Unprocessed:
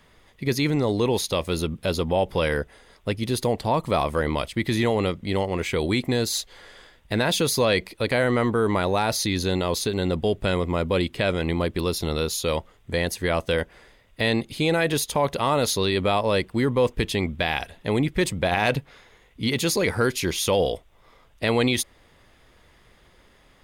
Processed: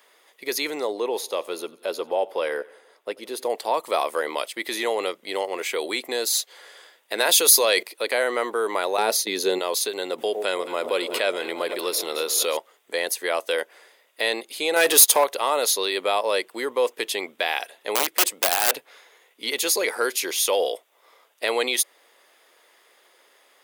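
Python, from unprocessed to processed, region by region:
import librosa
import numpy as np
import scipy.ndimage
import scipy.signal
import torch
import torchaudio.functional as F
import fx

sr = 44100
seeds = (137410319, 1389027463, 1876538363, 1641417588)

y = fx.chain(x, sr, fx.high_shelf(hz=2100.0, db=-10.0),
    fx.echo_feedback(ms=89, feedback_pct=54, wet_db=-22.0), at=(0.87, 3.5))
y = fx.chain(y, sr, fx.high_shelf(hz=4800.0, db=7.0),
    fx.hum_notches(base_hz=50, count=6),
    fx.env_flatten(amount_pct=50), at=(7.18, 7.83))
y = fx.chain(y, sr, fx.gate_hold(open_db=-14.0, close_db=-26.0, hold_ms=71.0, range_db=-21, attack_ms=1.4, release_ms=100.0),
    fx.small_body(hz=(210.0, 400.0), ring_ms=35, db=11), at=(8.97, 9.59))
y = fx.chain(y, sr, fx.echo_alternate(ms=110, hz=900.0, feedback_pct=81, wet_db=-14.0),
    fx.pre_swell(db_per_s=41.0), at=(10.18, 12.57))
y = fx.chain(y, sr, fx.high_shelf(hz=5200.0, db=5.5),
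    fx.leveller(passes=2), at=(14.76, 15.24))
y = fx.chain(y, sr, fx.overflow_wrap(gain_db=15.5),
    fx.highpass(hz=170.0, slope=12), at=(17.95, 18.76))
y = scipy.signal.sosfilt(scipy.signal.butter(4, 400.0, 'highpass', fs=sr, output='sos'), y)
y = fx.high_shelf(y, sr, hz=8700.0, db=11.5)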